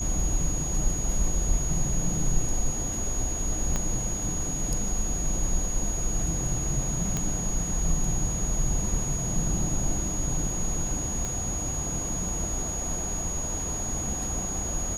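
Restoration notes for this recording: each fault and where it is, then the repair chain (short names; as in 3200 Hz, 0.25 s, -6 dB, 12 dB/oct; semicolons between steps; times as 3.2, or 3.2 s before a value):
tone 6700 Hz -31 dBFS
3.76 pop -14 dBFS
7.17 pop -14 dBFS
11.25 pop -19 dBFS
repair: de-click; notch 6700 Hz, Q 30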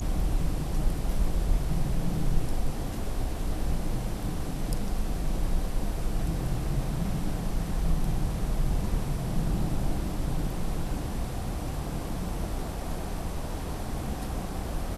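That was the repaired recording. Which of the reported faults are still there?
3.76 pop
11.25 pop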